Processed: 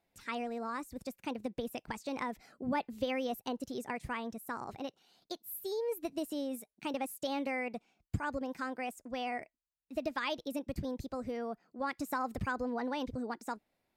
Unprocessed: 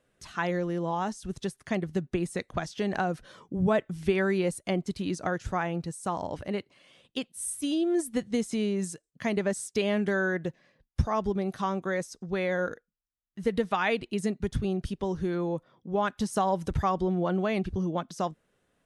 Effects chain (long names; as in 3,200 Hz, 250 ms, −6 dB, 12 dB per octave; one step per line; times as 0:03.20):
wrong playback speed 33 rpm record played at 45 rpm
level −8.5 dB